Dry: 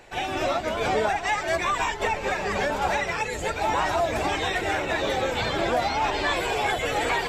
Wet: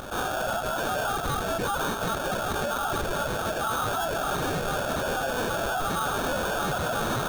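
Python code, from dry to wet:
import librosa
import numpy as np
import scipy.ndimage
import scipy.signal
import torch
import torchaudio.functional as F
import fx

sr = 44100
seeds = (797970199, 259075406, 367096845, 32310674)

y = scipy.signal.sosfilt(scipy.signal.cheby1(10, 1.0, 380.0, 'highpass', fs=sr, output='sos'), x)
y = fx.tilt_eq(y, sr, slope=3.5)
y = fx.notch(y, sr, hz=1700.0, q=12.0)
y = fx.sample_hold(y, sr, seeds[0], rate_hz=2000.0, jitter_pct=0)
y = 10.0 ** (-24.5 / 20.0) * np.tanh(y / 10.0 ** (-24.5 / 20.0))
y = fx.formant_shift(y, sr, semitones=4)
y = fx.env_flatten(y, sr, amount_pct=50)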